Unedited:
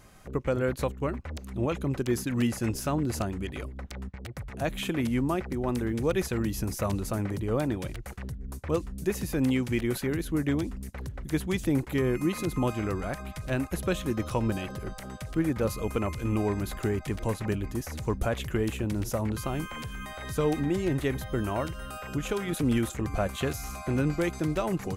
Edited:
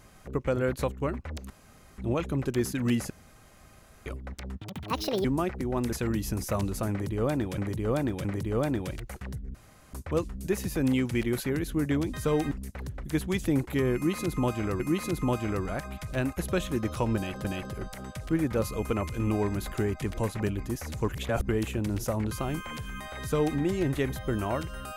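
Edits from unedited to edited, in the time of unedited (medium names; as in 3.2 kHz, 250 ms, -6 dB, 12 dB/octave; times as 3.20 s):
1.50 s: insert room tone 0.48 s
2.62–3.58 s: room tone
4.13–5.16 s: speed 162%
5.84–6.23 s: delete
7.21–7.88 s: loop, 3 plays
8.51 s: insert room tone 0.39 s
12.14–12.99 s: loop, 2 plays
14.50–14.79 s: loop, 2 plays
18.14–18.54 s: reverse
20.26–20.64 s: copy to 10.71 s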